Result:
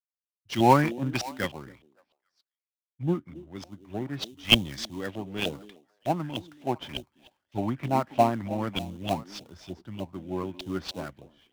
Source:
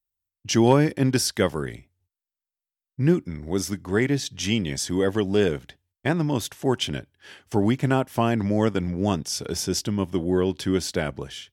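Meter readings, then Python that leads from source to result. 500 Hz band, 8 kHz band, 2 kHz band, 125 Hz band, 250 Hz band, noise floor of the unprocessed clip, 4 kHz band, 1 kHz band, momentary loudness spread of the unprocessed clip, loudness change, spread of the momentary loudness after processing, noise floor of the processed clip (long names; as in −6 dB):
−7.0 dB, −14.0 dB, −3.0 dB, −7.5 dB, −7.5 dB, below −85 dBFS, +0.5 dB, +2.5 dB, 7 LU, −4.5 dB, 21 LU, below −85 dBFS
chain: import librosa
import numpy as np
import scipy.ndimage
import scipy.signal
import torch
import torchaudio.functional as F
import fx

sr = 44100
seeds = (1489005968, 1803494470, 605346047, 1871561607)

p1 = fx.high_shelf_res(x, sr, hz=2500.0, db=11.5, q=1.5)
p2 = p1 + fx.echo_stepped(p1, sr, ms=277, hz=300.0, octaves=1.4, feedback_pct=70, wet_db=-7.5, dry=0)
p3 = fx.filter_lfo_lowpass(p2, sr, shape='saw_up', hz=3.3, low_hz=630.0, high_hz=2900.0, q=5.1)
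p4 = fx.peak_eq(p3, sr, hz=430.0, db=-9.5, octaves=0.27)
p5 = fx.sample_hold(p4, sr, seeds[0], rate_hz=3300.0, jitter_pct=20)
p6 = p4 + (p5 * 10.0 ** (-5.5 / 20.0))
p7 = fx.band_widen(p6, sr, depth_pct=100)
y = p7 * 10.0 ** (-13.0 / 20.0)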